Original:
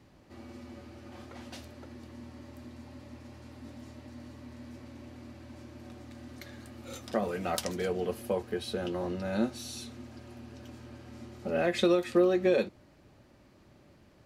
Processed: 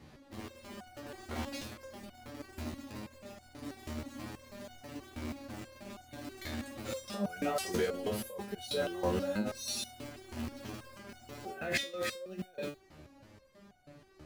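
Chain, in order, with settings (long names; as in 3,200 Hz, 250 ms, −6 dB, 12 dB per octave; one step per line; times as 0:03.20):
in parallel at −7.5 dB: bit reduction 7 bits
on the sum: compressor whose output falls as the input rises −32 dBFS, ratio −1
step-sequenced resonator 6.2 Hz 76–730 Hz
level +9.5 dB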